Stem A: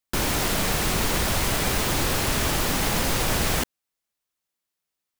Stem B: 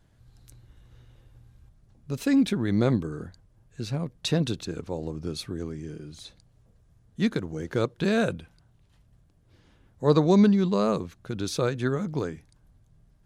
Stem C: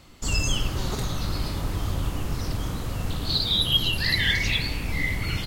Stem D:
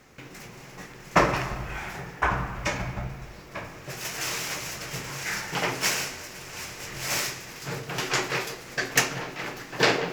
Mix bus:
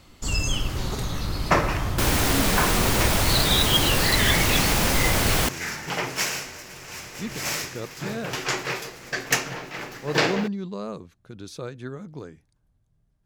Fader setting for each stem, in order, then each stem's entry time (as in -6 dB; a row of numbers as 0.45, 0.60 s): +1.5, -9.0, -0.5, -0.5 dB; 1.85, 0.00, 0.00, 0.35 s